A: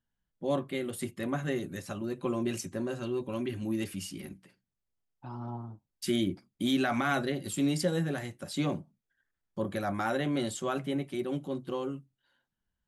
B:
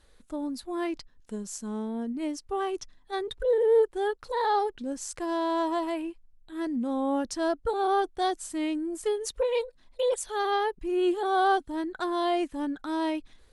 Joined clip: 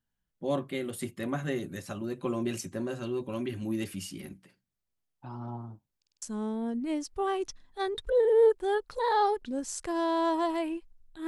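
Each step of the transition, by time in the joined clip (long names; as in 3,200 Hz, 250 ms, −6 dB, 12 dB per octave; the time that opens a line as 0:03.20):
A
0:05.97: stutter in place 0.05 s, 5 plays
0:06.22: continue with B from 0:01.55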